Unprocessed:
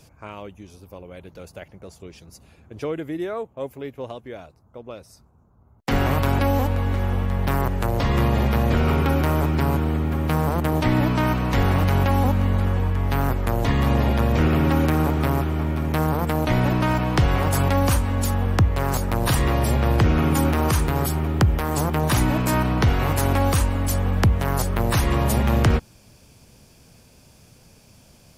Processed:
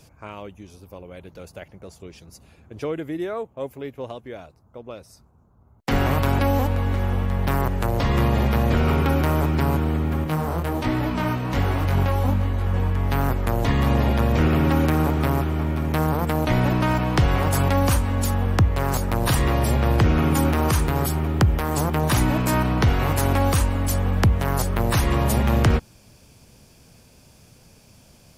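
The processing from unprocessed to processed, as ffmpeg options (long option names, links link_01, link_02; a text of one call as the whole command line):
ffmpeg -i in.wav -filter_complex "[0:a]asettb=1/sr,asplit=3[link_01][link_02][link_03];[link_01]atrim=end=10.244[link_04];[link_02]atrim=start=10.24:end=12.74,asetpts=PTS-STARTPTS,afade=type=in:duration=0.004:curve=qsin,afade=type=out:start_time=2.496:duration=0.004:curve=qsin,flanger=delay=18.5:depth=5.4:speed=1.3[link_05];[link_03]atrim=start=12.736[link_06];[link_04][link_05]acrossfade=duration=0.004:curve1=hsin:curve2=qsin[link_07];[link_07][link_06]acrossfade=duration=0.004:curve1=qsin:curve2=hsin" out.wav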